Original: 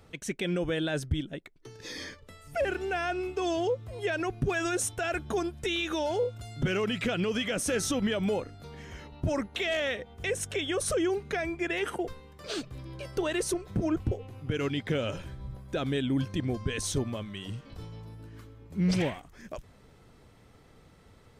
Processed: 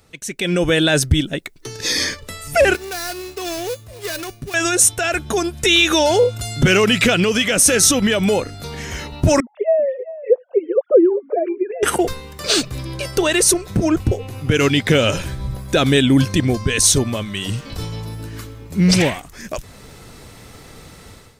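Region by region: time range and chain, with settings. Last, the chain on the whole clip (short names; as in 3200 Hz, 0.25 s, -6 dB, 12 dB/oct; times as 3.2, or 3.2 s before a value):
2.75–4.54 switching dead time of 0.15 ms + resonator 580 Hz, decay 0.33 s, mix 80%
9.4–11.83 sine-wave speech + Chebyshev band-pass 190–690 Hz + echo 0.391 s -16 dB
whole clip: high shelf 3000 Hz +11 dB; notch 3200 Hz, Q 19; AGC gain up to 15.5 dB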